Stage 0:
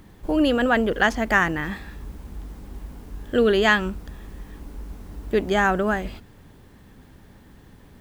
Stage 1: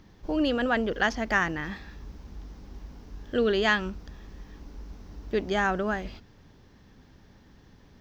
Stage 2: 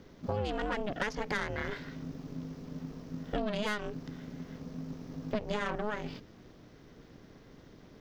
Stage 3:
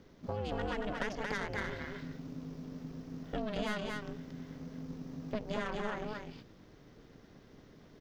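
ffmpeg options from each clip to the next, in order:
-af "highshelf=f=7.1k:t=q:w=3:g=-8.5,volume=-6dB"
-af "aeval=exprs='(tanh(11.2*val(0)+0.6)-tanh(0.6))/11.2':c=same,aeval=exprs='val(0)*sin(2*PI*210*n/s)':c=same,acompressor=threshold=-35dB:ratio=6,volume=6dB"
-af "aecho=1:1:229:0.708,volume=-4.5dB"

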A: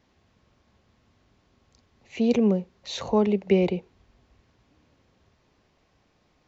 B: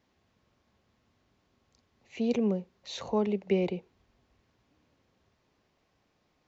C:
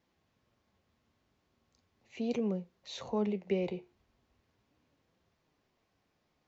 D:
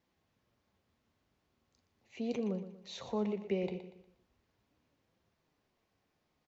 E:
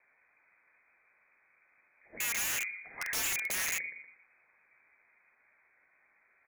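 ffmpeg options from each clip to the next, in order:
-af "lowshelf=f=81:g=-6.5,volume=-6dB"
-af "flanger=delay=5.8:depth=8.3:regen=71:speed=0.38:shape=sinusoidal"
-af "aecho=1:1:119|238|357|476:0.266|0.101|0.0384|0.0146,volume=-2.5dB"
-filter_complex "[0:a]asplit=2[a][b];[b]highpass=f=720:p=1,volume=21dB,asoftclip=type=tanh:threshold=-22dB[c];[a][c]amix=inputs=2:normalize=0,lowpass=f=1k:p=1,volume=-6dB,lowpass=f=2.2k:t=q:w=0.5098,lowpass=f=2.2k:t=q:w=0.6013,lowpass=f=2.2k:t=q:w=0.9,lowpass=f=2.2k:t=q:w=2.563,afreqshift=-2600,aeval=exprs='(mod(33.5*val(0)+1,2)-1)/33.5':c=same,volume=2.5dB"

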